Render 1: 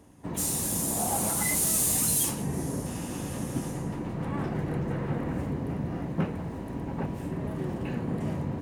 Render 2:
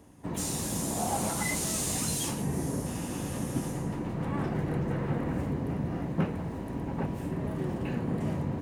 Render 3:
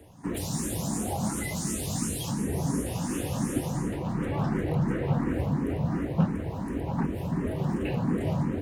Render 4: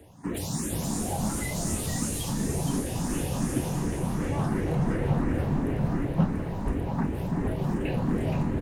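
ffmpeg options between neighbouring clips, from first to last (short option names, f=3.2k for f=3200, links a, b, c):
-filter_complex "[0:a]acrossover=split=7600[a][b];[b]acompressor=threshold=-42dB:ratio=4:attack=1:release=60[c];[a][c]amix=inputs=2:normalize=0"
-filter_complex "[0:a]acrossover=split=370[a][b];[b]alimiter=level_in=5dB:limit=-24dB:level=0:latency=1:release=456,volume=-5dB[c];[a][c]amix=inputs=2:normalize=0,asplit=2[d][e];[e]afreqshift=2.8[f];[d][f]amix=inputs=2:normalize=1,volume=6.5dB"
-filter_complex "[0:a]asplit=6[a][b][c][d][e][f];[b]adelay=470,afreqshift=-120,volume=-6dB[g];[c]adelay=940,afreqshift=-240,volume=-12.9dB[h];[d]adelay=1410,afreqshift=-360,volume=-19.9dB[i];[e]adelay=1880,afreqshift=-480,volume=-26.8dB[j];[f]adelay=2350,afreqshift=-600,volume=-33.7dB[k];[a][g][h][i][j][k]amix=inputs=6:normalize=0"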